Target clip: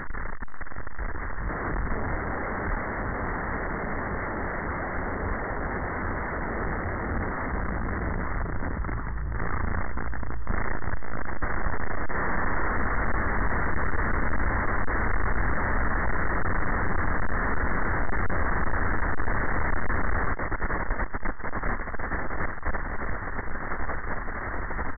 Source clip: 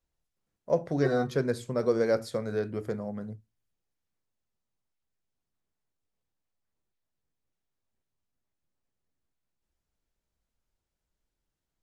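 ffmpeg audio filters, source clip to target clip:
-filter_complex "[0:a]aeval=exprs='val(0)+0.5*0.0376*sgn(val(0))':c=same,asplit=2[a][b];[b]aecho=0:1:670|1206|1635|1978|2252:0.631|0.398|0.251|0.158|0.1[c];[a][c]amix=inputs=2:normalize=0,aexciter=amount=1.7:drive=9.1:freq=3.5k,atempo=1.8,aresample=16000,aeval=exprs='(mod(22.4*val(0)+1,2)-1)/22.4':c=same,aresample=44100,equalizer=f=510:t=o:w=0.34:g=-9,asetrate=11598,aresample=44100,lowshelf=f=140:g=9.5"

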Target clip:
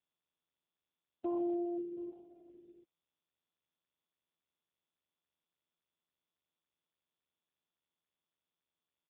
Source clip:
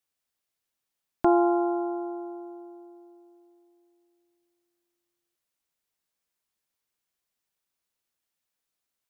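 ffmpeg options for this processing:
-filter_complex "[0:a]afftfilt=real='re*gte(hypot(re,im),0.251)':imag='im*gte(hypot(re,im),0.251)':win_size=1024:overlap=0.75,crystalizer=i=9.5:c=0,adynamicequalizer=threshold=0.01:dfrequency=160:dqfactor=1.5:tfrequency=160:tqfactor=1.5:attack=5:release=100:ratio=0.375:range=3:mode=boostabove:tftype=bell,areverse,acompressor=threshold=-25dB:ratio=16,areverse,afftdn=nr=27:nf=-48,equalizer=f=870:t=o:w=1.6:g=-11.5,asplit=2[a][b];[b]aecho=0:1:722:0.0944[c];[a][c]amix=inputs=2:normalize=0" -ar 8000 -c:a libopencore_amrnb -b:a 5150

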